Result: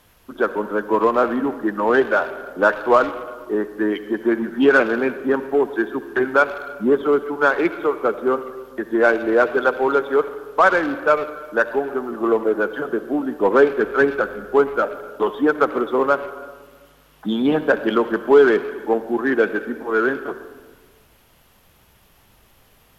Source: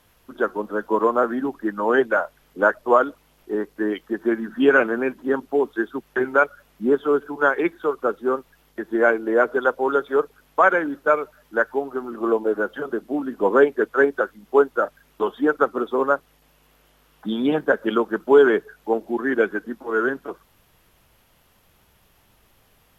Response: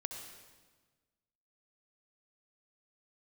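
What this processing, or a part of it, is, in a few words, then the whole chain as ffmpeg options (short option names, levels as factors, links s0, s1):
saturated reverb return: -filter_complex "[0:a]asplit=3[s0][s1][s2];[s0]afade=t=out:st=13.76:d=0.02[s3];[s1]asubboost=boost=2.5:cutoff=220,afade=t=in:st=13.76:d=0.02,afade=t=out:st=14.82:d=0.02[s4];[s2]afade=t=in:st=14.82:d=0.02[s5];[s3][s4][s5]amix=inputs=3:normalize=0,asplit=2[s6][s7];[1:a]atrim=start_sample=2205[s8];[s7][s8]afir=irnorm=-1:irlink=0,asoftclip=type=tanh:threshold=0.075,volume=0.794[s9];[s6][s9]amix=inputs=2:normalize=0"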